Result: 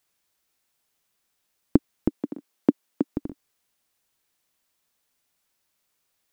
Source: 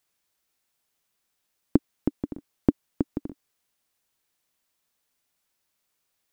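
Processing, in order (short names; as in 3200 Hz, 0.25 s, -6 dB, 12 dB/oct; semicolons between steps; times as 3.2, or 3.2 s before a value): 2.08–3.16 HPF 190 Hz 24 dB/oct; gain +2 dB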